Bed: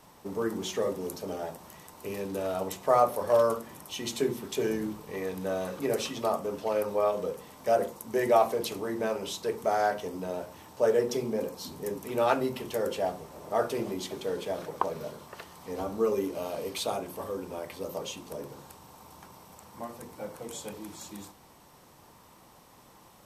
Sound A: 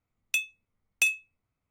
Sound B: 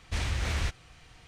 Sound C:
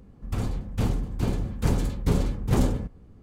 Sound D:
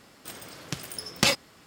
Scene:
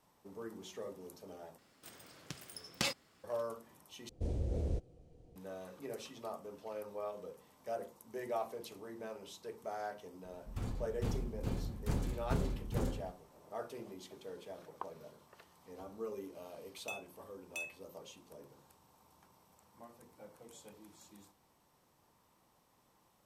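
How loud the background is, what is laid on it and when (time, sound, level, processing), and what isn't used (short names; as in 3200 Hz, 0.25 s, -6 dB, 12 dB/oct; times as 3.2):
bed -15.5 dB
1.58 replace with D -13 dB
4.09 replace with B -5.5 dB + EQ curve 100 Hz 0 dB, 510 Hz +9 dB, 1100 Hz -21 dB, 1900 Hz -27 dB, 8700 Hz -15 dB
10.24 add C -12 dB + ending faded out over 0.87 s
16.54 add A -11.5 dB + limiter -22.5 dBFS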